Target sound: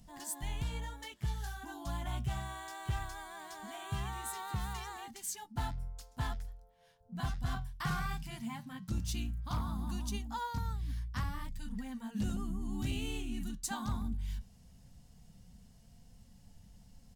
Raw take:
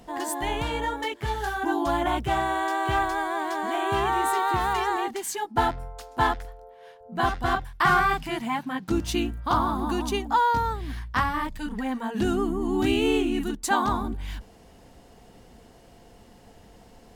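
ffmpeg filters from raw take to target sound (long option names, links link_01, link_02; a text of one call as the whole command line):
ffmpeg -i in.wav -af "firequalizer=gain_entry='entry(180,0);entry(340,-24);entry(530,-18);entry(5400,-4)':delay=0.05:min_phase=1,asoftclip=type=hard:threshold=-25dB,flanger=delay=3.4:depth=5.4:regen=80:speed=0.18:shape=sinusoidal,volume=2dB" out.wav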